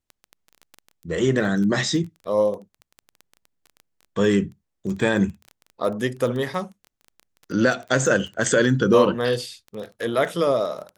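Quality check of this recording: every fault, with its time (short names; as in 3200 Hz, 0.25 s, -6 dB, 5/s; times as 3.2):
crackle 14/s -29 dBFS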